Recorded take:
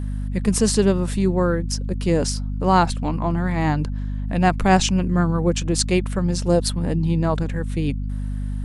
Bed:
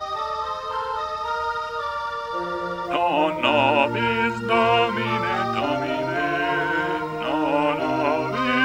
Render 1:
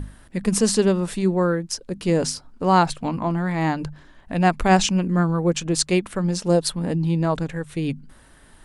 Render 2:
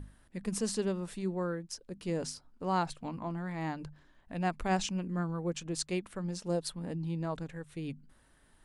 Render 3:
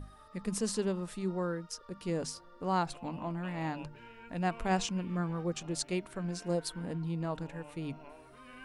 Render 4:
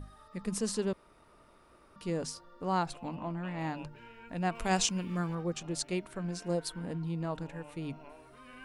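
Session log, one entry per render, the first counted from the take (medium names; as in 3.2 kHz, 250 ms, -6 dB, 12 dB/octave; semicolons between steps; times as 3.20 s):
hum notches 50/100/150/200/250 Hz
trim -14 dB
add bed -31 dB
0.93–1.96 s: room tone; 3.15–3.59 s: distance through air 53 m; 4.55–5.35 s: treble shelf 3.3 kHz +11 dB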